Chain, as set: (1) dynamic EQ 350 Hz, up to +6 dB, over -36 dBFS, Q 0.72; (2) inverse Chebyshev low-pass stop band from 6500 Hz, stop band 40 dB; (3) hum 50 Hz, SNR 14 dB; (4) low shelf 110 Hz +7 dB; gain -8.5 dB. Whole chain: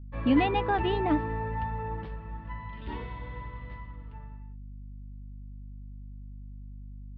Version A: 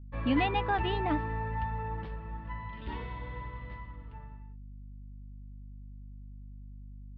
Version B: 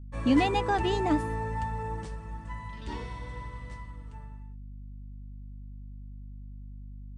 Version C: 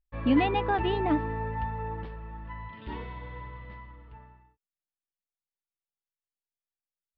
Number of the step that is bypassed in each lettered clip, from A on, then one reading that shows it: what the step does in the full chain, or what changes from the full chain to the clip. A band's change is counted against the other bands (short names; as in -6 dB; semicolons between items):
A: 1, loudness change -3.0 LU; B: 2, 4 kHz band +2.5 dB; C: 3, momentary loudness spread change -1 LU